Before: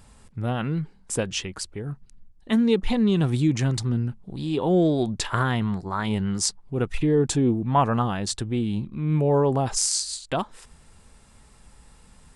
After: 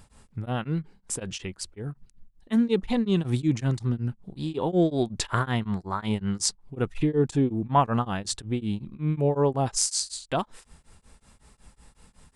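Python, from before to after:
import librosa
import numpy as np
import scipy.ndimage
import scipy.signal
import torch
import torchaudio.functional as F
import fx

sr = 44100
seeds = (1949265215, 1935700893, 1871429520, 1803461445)

y = x * np.abs(np.cos(np.pi * 5.4 * np.arange(len(x)) / sr))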